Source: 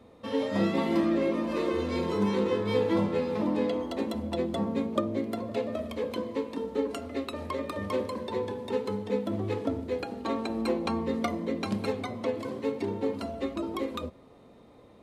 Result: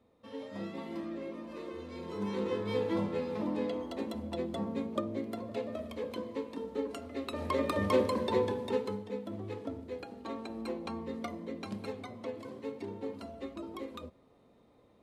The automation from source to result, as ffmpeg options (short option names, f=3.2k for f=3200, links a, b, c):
-af "volume=3dB,afade=t=in:st=1.98:d=0.53:silence=0.398107,afade=t=in:st=7.17:d=0.47:silence=0.354813,afade=t=out:st=8.32:d=0.77:silence=0.237137"